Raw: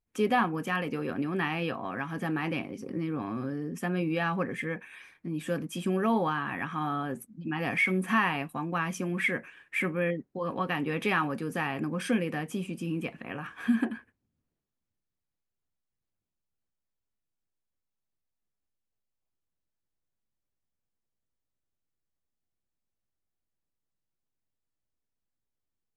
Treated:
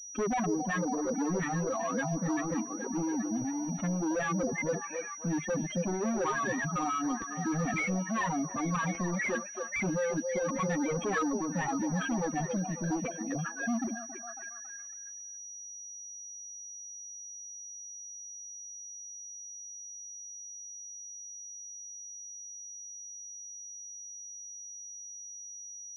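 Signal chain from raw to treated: spectral contrast raised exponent 3.4; in parallel at +0.5 dB: limiter -27 dBFS, peak gain reduction 10.5 dB; on the sum: hard clip -28 dBFS, distortion -8 dB; reverb removal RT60 2 s; on a send: delay with a stepping band-pass 0.275 s, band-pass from 510 Hz, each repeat 0.7 oct, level -3 dB; on the sum: pulse-width modulation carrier 5800 Hz

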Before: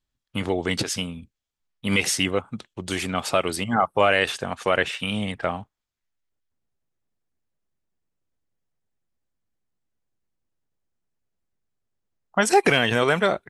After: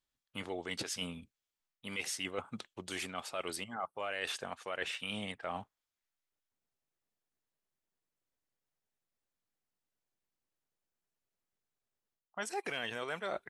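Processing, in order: low shelf 250 Hz -11.5 dB; reverse; compressor 6:1, threshold -33 dBFS, peak gain reduction 18 dB; reverse; gain -3 dB

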